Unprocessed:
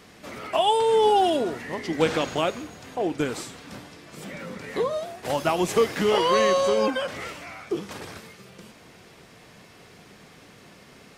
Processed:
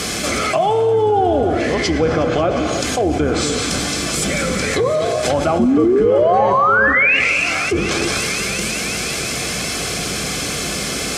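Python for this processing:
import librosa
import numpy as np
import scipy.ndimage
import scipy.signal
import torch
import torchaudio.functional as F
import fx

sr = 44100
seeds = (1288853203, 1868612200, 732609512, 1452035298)

p1 = fx.octave_divider(x, sr, octaves=2, level_db=-2.0)
p2 = fx.env_lowpass_down(p1, sr, base_hz=1200.0, full_db=-20.5)
p3 = fx.peak_eq(p2, sr, hz=8100.0, db=12.0, octaves=2.0)
p4 = fx.spec_paint(p3, sr, seeds[0], shape='rise', start_s=5.59, length_s=1.6, low_hz=220.0, high_hz=2900.0, level_db=-15.0)
p5 = fx.notch_comb(p4, sr, f0_hz=940.0)
p6 = p5 + fx.echo_wet_highpass(p5, sr, ms=180, feedback_pct=82, hz=4500.0, wet_db=-11.5, dry=0)
p7 = fx.rev_gated(p6, sr, seeds[1], gate_ms=350, shape='flat', drr_db=8.5)
y = fx.env_flatten(p7, sr, amount_pct=70)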